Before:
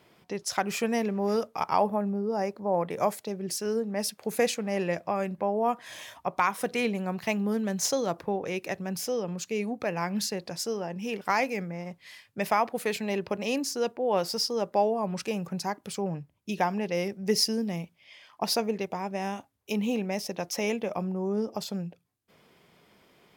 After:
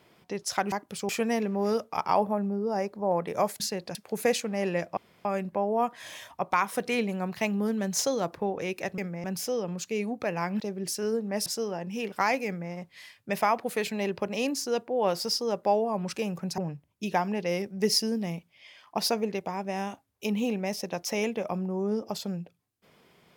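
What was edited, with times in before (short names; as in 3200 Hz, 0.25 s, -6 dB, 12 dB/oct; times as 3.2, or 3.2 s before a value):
3.23–4.09 swap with 10.2–10.55
5.11 insert room tone 0.28 s
11.55–11.81 copy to 8.84
15.67–16.04 move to 0.72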